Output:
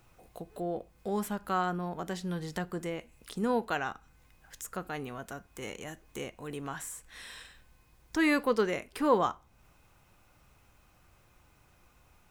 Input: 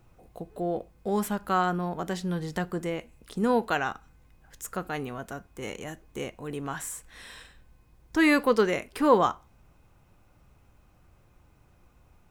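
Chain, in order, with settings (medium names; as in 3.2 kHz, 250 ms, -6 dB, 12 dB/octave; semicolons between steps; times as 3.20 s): tape noise reduction on one side only encoder only; trim -5 dB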